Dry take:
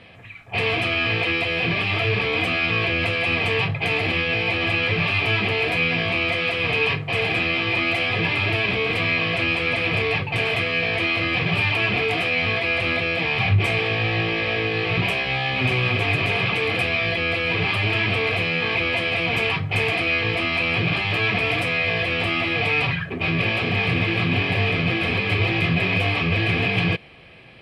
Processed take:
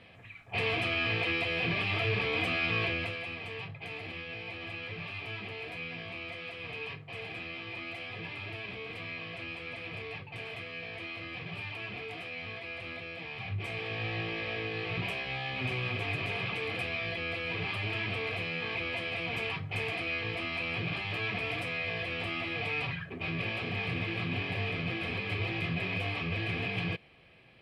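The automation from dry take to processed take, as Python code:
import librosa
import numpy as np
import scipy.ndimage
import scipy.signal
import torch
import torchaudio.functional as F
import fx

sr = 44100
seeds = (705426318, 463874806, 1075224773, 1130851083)

y = fx.gain(x, sr, db=fx.line((2.85, -8.5), (3.35, -19.0), (13.43, -19.0), (14.04, -12.5)))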